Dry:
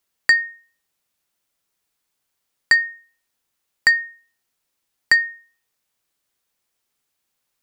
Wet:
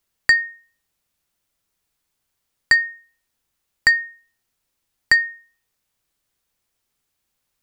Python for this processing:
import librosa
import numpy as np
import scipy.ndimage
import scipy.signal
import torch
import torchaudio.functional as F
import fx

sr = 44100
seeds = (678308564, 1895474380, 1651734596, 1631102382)

y = fx.low_shelf(x, sr, hz=130.0, db=11.0)